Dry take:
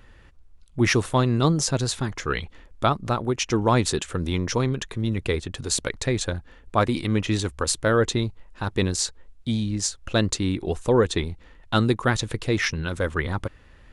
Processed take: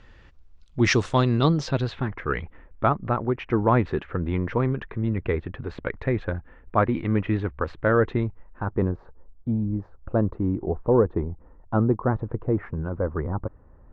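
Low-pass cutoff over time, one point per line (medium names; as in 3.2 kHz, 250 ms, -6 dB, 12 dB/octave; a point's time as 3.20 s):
low-pass 24 dB/octave
1.14 s 6.4 kHz
1.78 s 3.6 kHz
2.20 s 2.1 kHz
8.24 s 2.1 kHz
9.04 s 1.1 kHz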